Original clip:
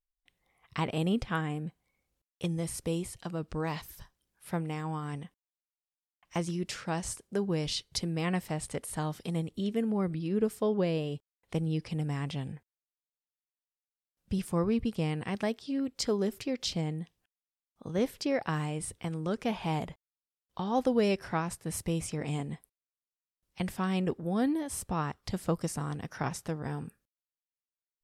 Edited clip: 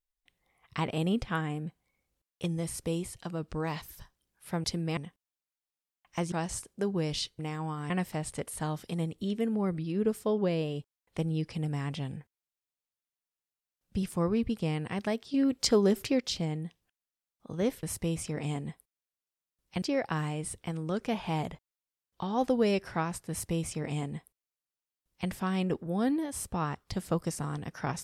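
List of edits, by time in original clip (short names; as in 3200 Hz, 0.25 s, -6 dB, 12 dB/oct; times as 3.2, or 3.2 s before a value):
4.64–5.15 swap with 7.93–8.26
6.5–6.86 cut
15.7–16.56 gain +5.5 dB
21.67–23.66 copy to 18.19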